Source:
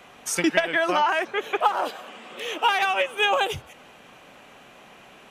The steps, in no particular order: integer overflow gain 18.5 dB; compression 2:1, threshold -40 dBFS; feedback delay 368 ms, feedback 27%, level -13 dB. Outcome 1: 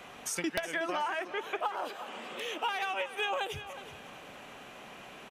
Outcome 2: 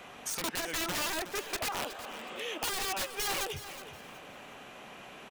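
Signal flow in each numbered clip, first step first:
compression > feedback delay > integer overflow; integer overflow > compression > feedback delay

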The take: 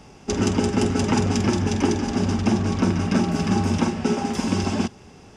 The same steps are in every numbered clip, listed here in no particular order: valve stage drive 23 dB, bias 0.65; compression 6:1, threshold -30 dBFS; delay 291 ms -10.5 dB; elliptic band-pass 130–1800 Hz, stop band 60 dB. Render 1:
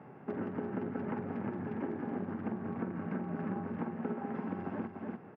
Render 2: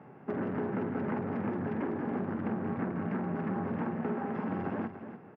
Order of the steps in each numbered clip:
delay > compression > valve stage > elliptic band-pass; valve stage > elliptic band-pass > compression > delay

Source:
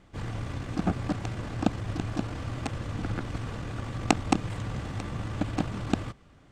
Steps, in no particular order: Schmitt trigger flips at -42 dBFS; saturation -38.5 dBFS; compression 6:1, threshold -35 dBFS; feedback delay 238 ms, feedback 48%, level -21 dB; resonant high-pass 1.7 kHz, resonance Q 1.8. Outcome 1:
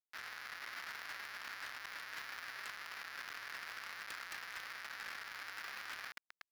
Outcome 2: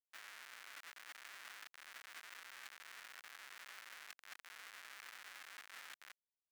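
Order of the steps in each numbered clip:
feedback delay > Schmitt trigger > resonant high-pass > saturation > compression; compression > saturation > feedback delay > Schmitt trigger > resonant high-pass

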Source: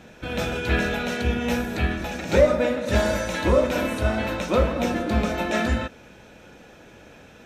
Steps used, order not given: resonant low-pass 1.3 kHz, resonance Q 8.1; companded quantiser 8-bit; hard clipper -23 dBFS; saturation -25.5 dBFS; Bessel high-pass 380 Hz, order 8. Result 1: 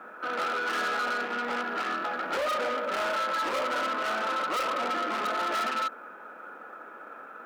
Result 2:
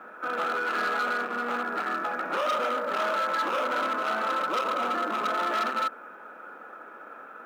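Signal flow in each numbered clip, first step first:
resonant low-pass > companded quantiser > saturation > Bessel high-pass > hard clipper; saturation > resonant low-pass > hard clipper > Bessel high-pass > companded quantiser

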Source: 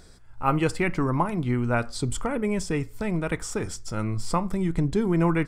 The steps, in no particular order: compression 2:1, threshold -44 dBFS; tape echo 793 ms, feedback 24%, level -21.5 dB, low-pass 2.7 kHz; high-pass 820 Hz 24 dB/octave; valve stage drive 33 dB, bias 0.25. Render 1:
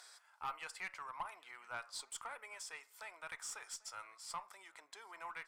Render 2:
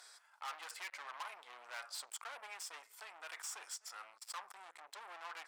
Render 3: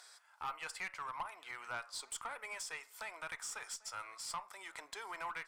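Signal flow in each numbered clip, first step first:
compression > high-pass > valve stage > tape echo; tape echo > valve stage > compression > high-pass; high-pass > tape echo > compression > valve stage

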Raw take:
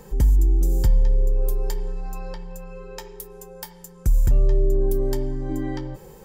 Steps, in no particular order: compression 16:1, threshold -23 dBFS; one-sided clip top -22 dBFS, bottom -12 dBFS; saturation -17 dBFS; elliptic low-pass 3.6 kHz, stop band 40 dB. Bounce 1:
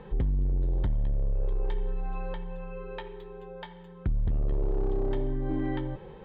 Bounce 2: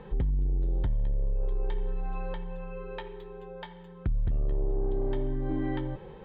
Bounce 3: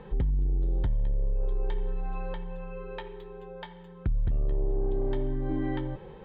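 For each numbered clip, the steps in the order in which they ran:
saturation > elliptic low-pass > one-sided clip > compression; saturation > compression > one-sided clip > elliptic low-pass; elliptic low-pass > saturation > compression > one-sided clip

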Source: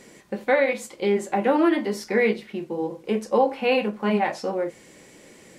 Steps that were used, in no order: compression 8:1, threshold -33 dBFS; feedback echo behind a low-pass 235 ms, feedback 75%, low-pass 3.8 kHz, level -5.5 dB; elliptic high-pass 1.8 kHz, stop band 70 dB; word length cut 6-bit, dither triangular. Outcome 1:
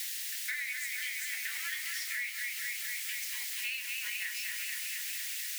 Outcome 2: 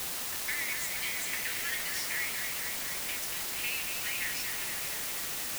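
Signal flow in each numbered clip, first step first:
feedback echo behind a low-pass > word length cut > elliptic high-pass > compression; elliptic high-pass > compression > feedback echo behind a low-pass > word length cut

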